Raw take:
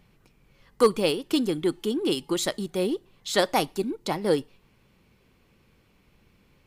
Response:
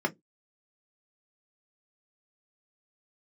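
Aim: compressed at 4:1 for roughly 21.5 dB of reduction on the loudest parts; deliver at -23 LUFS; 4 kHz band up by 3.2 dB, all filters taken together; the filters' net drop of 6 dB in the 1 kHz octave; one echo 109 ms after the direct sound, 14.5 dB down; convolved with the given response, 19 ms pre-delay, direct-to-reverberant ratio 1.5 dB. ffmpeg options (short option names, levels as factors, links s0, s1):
-filter_complex "[0:a]equalizer=f=1000:t=o:g=-8.5,equalizer=f=4000:t=o:g=4.5,acompressor=threshold=0.00794:ratio=4,aecho=1:1:109:0.188,asplit=2[s0][s1];[1:a]atrim=start_sample=2205,adelay=19[s2];[s1][s2]afir=irnorm=-1:irlink=0,volume=0.282[s3];[s0][s3]amix=inputs=2:normalize=0,volume=6.31"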